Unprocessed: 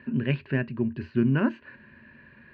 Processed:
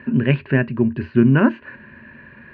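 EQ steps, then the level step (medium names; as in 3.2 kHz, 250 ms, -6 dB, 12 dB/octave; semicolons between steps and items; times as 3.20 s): tone controls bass +1 dB, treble -9 dB; peaking EQ 910 Hz +3 dB 3 oct; +7.5 dB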